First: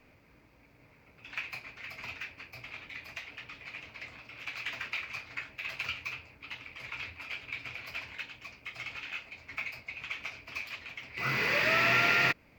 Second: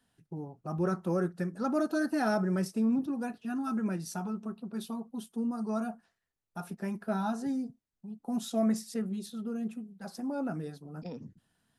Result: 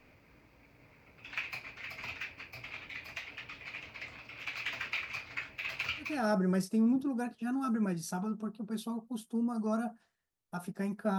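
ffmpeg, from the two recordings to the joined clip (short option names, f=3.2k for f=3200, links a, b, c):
-filter_complex "[0:a]apad=whole_dur=11.18,atrim=end=11.18,atrim=end=6.35,asetpts=PTS-STARTPTS[a];[1:a]atrim=start=2:end=7.21,asetpts=PTS-STARTPTS[b];[a][b]acrossfade=d=0.38:c1=tri:c2=tri"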